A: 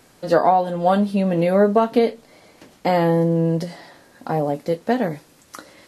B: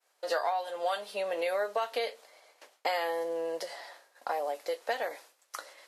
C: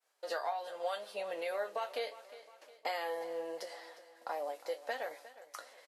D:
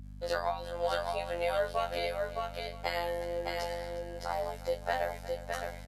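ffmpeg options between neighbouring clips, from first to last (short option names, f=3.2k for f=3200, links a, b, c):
-filter_complex "[0:a]highpass=f=530:w=0.5412,highpass=f=530:w=1.3066,agate=range=-33dB:threshold=-45dB:ratio=3:detection=peak,acrossover=split=1700[a][b];[a]acompressor=threshold=-27dB:ratio=6[c];[c][b]amix=inputs=2:normalize=0,volume=-2.5dB"
-af "flanger=delay=5.8:depth=5.3:regen=66:speed=0.77:shape=triangular,aecho=1:1:358|716|1074|1432:0.15|0.0718|0.0345|0.0165,volume=-2dB"
-af "afftfilt=real='hypot(re,im)*cos(PI*b)':imag='0':win_size=2048:overlap=0.75,aecho=1:1:614:0.668,aeval=exprs='val(0)+0.00251*(sin(2*PI*50*n/s)+sin(2*PI*2*50*n/s)/2+sin(2*PI*3*50*n/s)/3+sin(2*PI*4*50*n/s)/4+sin(2*PI*5*50*n/s)/5)':c=same,volume=7.5dB"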